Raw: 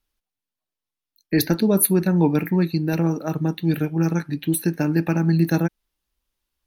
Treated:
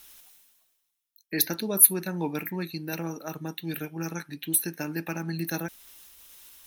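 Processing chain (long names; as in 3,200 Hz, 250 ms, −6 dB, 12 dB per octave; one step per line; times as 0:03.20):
notch filter 4,600 Hz, Q 10
reversed playback
upward compression, threshold −25 dBFS
reversed playback
spectral tilt +3 dB per octave
level −7 dB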